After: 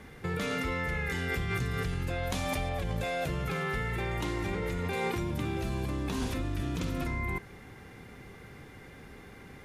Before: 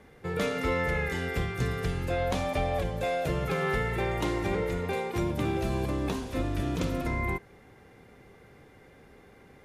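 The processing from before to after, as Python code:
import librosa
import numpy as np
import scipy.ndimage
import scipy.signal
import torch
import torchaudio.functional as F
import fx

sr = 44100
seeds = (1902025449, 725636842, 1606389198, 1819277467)

p1 = fx.peak_eq(x, sr, hz=550.0, db=-6.5, octaves=1.4)
p2 = fx.over_compress(p1, sr, threshold_db=-37.0, ratio=-0.5)
p3 = p1 + (p2 * librosa.db_to_amplitude(1.5))
p4 = fx.high_shelf(p3, sr, hz=5200.0, db=7.5, at=(2.23, 2.69))
y = p4 * librosa.db_to_amplitude(-4.0)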